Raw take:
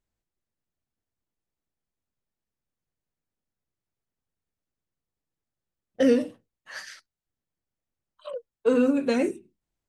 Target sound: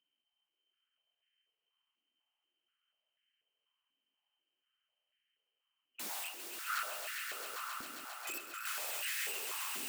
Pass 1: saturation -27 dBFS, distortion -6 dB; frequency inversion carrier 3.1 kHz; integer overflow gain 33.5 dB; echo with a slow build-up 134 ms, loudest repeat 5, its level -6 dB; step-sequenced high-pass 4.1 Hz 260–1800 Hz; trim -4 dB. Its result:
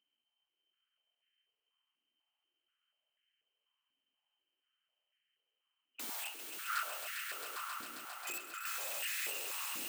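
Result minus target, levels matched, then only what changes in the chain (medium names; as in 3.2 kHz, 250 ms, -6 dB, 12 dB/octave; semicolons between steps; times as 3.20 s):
saturation: distortion +11 dB
change: saturation -15.5 dBFS, distortion -17 dB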